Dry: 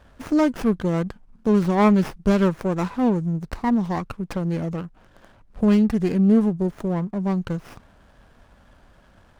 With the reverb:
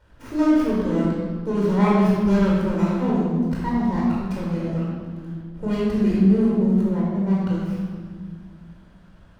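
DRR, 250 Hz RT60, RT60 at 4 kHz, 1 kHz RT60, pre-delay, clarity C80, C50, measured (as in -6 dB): -6.0 dB, 2.7 s, 1.4 s, 1.5 s, 18 ms, 0.5 dB, -1.5 dB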